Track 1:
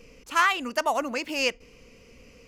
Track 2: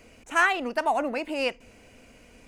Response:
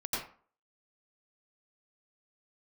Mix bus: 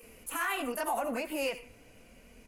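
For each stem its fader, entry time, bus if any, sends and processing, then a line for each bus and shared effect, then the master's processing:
+1.5 dB, 0.00 s, send -22 dB, HPF 370 Hz; resonant high shelf 7700 Hz +13.5 dB, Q 3; auto duck -13 dB, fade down 1.25 s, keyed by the second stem
-1.5 dB, 25 ms, no send, low shelf 250 Hz +4.5 dB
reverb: on, RT60 0.45 s, pre-delay 82 ms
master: flange 0.86 Hz, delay 4.5 ms, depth 2.8 ms, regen -47%; limiter -23 dBFS, peak gain reduction 11 dB

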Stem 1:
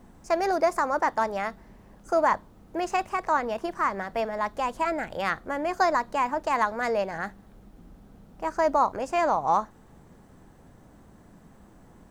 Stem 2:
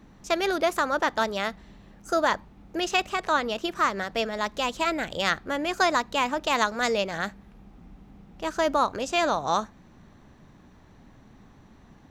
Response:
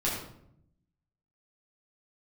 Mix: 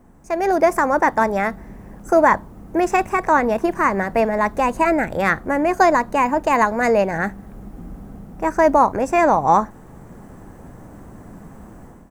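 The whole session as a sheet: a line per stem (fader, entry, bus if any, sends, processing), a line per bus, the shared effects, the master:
+1.0 dB, 0.00 s, no send, dry
-7.5 dB, 0.3 ms, no send, bell 4300 Hz -13 dB 0.77 oct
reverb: off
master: AGC gain up to 11.5 dB; bell 3800 Hz -9.5 dB 1.3 oct

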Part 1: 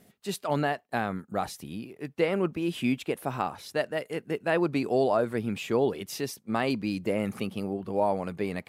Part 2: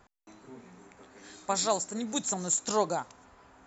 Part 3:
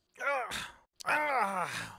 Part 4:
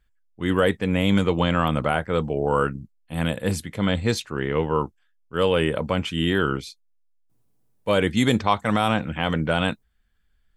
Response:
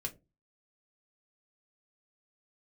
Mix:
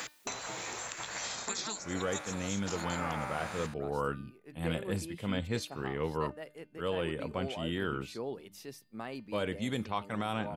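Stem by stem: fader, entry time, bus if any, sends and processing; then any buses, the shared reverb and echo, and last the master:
-16.5 dB, 2.45 s, no send, notches 50/100/150/200 Hz
-1.0 dB, 0.00 s, no send, spectral gate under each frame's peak -10 dB weak; three-band squash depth 100%
-1.0 dB, 1.75 s, no send, time blur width 0.384 s
-12.5 dB, 1.45 s, no send, dry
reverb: off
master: de-hum 300.8 Hz, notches 17; vocal rider within 3 dB 0.5 s

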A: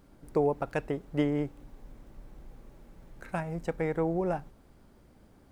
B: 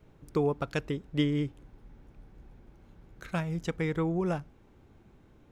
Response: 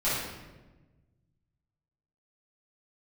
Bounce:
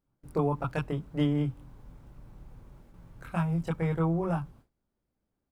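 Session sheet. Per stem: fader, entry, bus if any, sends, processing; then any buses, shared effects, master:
-3.5 dB, 0.00 s, no send, dry
0.0 dB, 23 ms, no send, fixed phaser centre 1900 Hz, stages 6; gate with hold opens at -46 dBFS; graphic EQ 125/500/1000/4000/8000 Hz +7/-10/+6/-10/+6 dB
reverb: off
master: gate with hold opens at -45 dBFS

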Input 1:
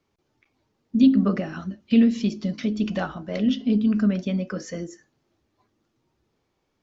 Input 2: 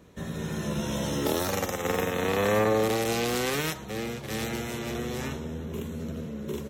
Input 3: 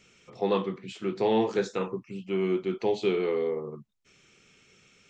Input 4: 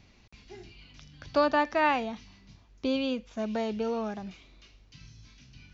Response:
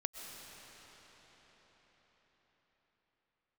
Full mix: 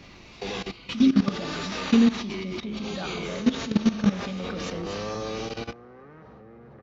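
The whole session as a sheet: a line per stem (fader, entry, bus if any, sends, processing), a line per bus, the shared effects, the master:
+1.0 dB, 0.00 s, send -15 dB, bell 3800 Hz +9.5 dB 0.36 oct
-7.0 dB, 2.50 s, send -9.5 dB, LPF 1700 Hz 24 dB/oct
-6.5 dB, 0.00 s, send -4 dB, band shelf 3500 Hz +15.5 dB; limiter -16.5 dBFS, peak gain reduction 8.5 dB
-3.0 dB, 0.00 s, send -20.5 dB, phase scrambler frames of 0.2 s; spectral compressor 10:1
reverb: on, RT60 5.6 s, pre-delay 85 ms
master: high shelf 2100 Hz -5.5 dB; level quantiser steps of 16 dB; small resonant body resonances 1200/3800 Hz, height 7 dB

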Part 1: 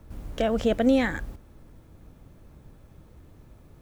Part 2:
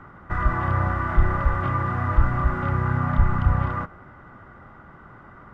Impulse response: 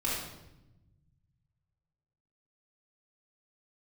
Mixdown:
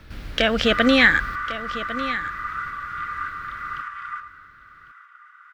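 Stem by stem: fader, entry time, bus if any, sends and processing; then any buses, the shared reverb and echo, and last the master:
+2.5 dB, 0.00 s, no send, echo send -13.5 dB, band shelf 2600 Hz +14 dB 2.3 oct
+2.0 dB, 0.35 s, send -14 dB, echo send -19 dB, tremolo saw up 1.7 Hz, depth 45%; steep high-pass 1200 Hz 72 dB/oct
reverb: on, RT60 0.95 s, pre-delay 3 ms
echo: echo 1.101 s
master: dry

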